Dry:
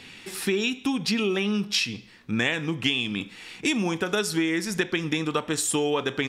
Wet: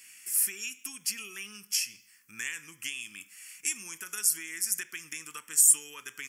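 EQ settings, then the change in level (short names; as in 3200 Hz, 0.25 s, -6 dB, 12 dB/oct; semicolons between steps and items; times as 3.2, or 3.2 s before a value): pre-emphasis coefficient 0.97; high shelf 4000 Hz +11.5 dB; fixed phaser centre 1600 Hz, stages 4; 0.0 dB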